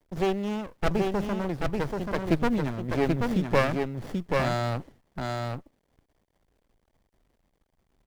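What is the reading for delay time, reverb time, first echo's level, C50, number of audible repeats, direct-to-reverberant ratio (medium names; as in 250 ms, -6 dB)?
783 ms, no reverb, -3.5 dB, no reverb, 1, no reverb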